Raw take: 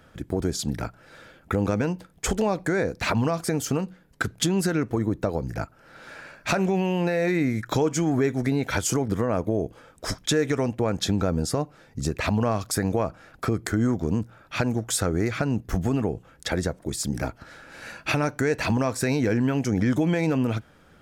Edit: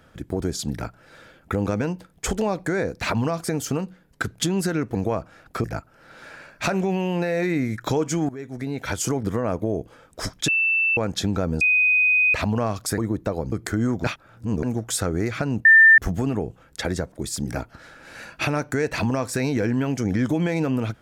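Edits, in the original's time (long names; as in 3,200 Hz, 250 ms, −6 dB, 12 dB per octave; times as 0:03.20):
0:04.95–0:05.49: swap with 0:12.83–0:13.52
0:08.14–0:08.94: fade in, from −18 dB
0:10.33–0:10.82: beep over 2,660 Hz −17.5 dBFS
0:11.46–0:12.19: beep over 2,500 Hz −15 dBFS
0:14.04–0:14.63: reverse
0:15.65: insert tone 1,790 Hz −8 dBFS 0.33 s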